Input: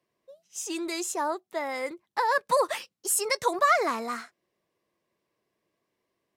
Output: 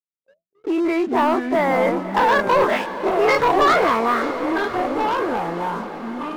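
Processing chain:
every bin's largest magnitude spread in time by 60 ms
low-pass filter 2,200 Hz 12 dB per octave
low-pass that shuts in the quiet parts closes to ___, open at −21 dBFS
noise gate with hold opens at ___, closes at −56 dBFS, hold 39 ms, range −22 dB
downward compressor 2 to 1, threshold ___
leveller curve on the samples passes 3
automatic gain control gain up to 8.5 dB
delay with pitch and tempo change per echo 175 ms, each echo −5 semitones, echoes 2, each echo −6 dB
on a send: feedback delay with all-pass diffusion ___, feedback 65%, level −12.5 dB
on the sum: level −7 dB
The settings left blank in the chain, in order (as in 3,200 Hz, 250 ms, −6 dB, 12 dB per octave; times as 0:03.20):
320 Hz, −52 dBFS, −26 dBFS, 544 ms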